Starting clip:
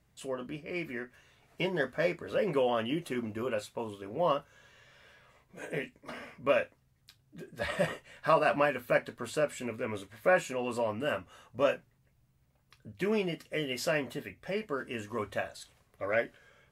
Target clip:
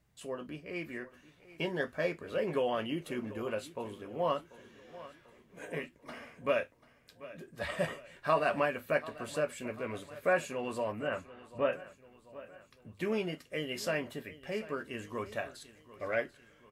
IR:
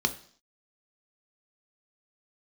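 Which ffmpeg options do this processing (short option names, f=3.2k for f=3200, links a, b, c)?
-filter_complex "[0:a]asettb=1/sr,asplit=3[a][b][c];[a]atrim=end=10.924[d];[b]atrim=start=10.92:end=11.73,asetpts=PTS-STARTPTS,afade=t=in:d=0.004:c=qsin,afade=t=out:st=0.806:d=0.004:c=qsin,lowpass=f=2.8k:w=0.5412,lowpass=f=2.8k:w=1.3066[e];[c]atrim=start=11.726[f];[d][e]acrossfade=d=0.004:c1=hsin:c2=qsin[g];[g][f]acrossfade=d=0.004:c1=qsin:c2=hsin,aecho=1:1:740|1480|2220|2960:0.133|0.0693|0.0361|0.0188,volume=-3dB"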